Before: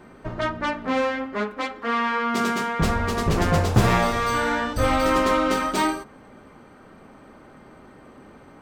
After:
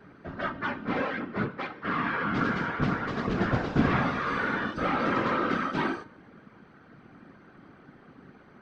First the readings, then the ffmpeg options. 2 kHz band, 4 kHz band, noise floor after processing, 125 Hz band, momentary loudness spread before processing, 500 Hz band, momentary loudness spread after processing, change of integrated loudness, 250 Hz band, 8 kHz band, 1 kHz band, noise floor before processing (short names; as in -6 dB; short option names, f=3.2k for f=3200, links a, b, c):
-3.5 dB, -10.0 dB, -55 dBFS, -7.0 dB, 9 LU, -8.0 dB, 7 LU, -6.0 dB, -4.0 dB, under -20 dB, -6.5 dB, -49 dBFS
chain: -filter_complex "[0:a]acrossover=split=3200[a][b];[b]acompressor=threshold=-42dB:ratio=4:attack=1:release=60[c];[a][c]amix=inputs=2:normalize=0,highpass=f=130:w=0.5412,highpass=f=130:w=1.3066,equalizer=f=210:t=q:w=4:g=7,equalizer=f=560:t=q:w=4:g=-5,equalizer=f=920:t=q:w=4:g=-4,equalizer=f=1.5k:t=q:w=4:g=5,lowpass=f=5.3k:w=0.5412,lowpass=f=5.3k:w=1.3066,afftfilt=real='hypot(re,im)*cos(2*PI*random(0))':imag='hypot(re,im)*sin(2*PI*random(1))':win_size=512:overlap=0.75,bandreject=f=305.9:t=h:w=4,bandreject=f=611.8:t=h:w=4,bandreject=f=917.7:t=h:w=4,bandreject=f=1.2236k:t=h:w=4,bandreject=f=1.5295k:t=h:w=4,bandreject=f=1.8354k:t=h:w=4,bandreject=f=2.1413k:t=h:w=4,bandreject=f=2.4472k:t=h:w=4,bandreject=f=2.7531k:t=h:w=4,bandreject=f=3.059k:t=h:w=4,bandreject=f=3.3649k:t=h:w=4,bandreject=f=3.6708k:t=h:w=4,bandreject=f=3.9767k:t=h:w=4,bandreject=f=4.2826k:t=h:w=4,bandreject=f=4.5885k:t=h:w=4,bandreject=f=4.8944k:t=h:w=4,bandreject=f=5.2003k:t=h:w=4,bandreject=f=5.5062k:t=h:w=4,bandreject=f=5.8121k:t=h:w=4,bandreject=f=6.118k:t=h:w=4,bandreject=f=6.4239k:t=h:w=4,bandreject=f=6.7298k:t=h:w=4,bandreject=f=7.0357k:t=h:w=4,bandreject=f=7.3416k:t=h:w=4,bandreject=f=7.6475k:t=h:w=4,bandreject=f=7.9534k:t=h:w=4,bandreject=f=8.2593k:t=h:w=4,bandreject=f=8.5652k:t=h:w=4,bandreject=f=8.8711k:t=h:w=4,bandreject=f=9.177k:t=h:w=4,bandreject=f=9.4829k:t=h:w=4,bandreject=f=9.7888k:t=h:w=4,bandreject=f=10.0947k:t=h:w=4,bandreject=f=10.4006k:t=h:w=4,bandreject=f=10.7065k:t=h:w=4,bandreject=f=11.0124k:t=h:w=4"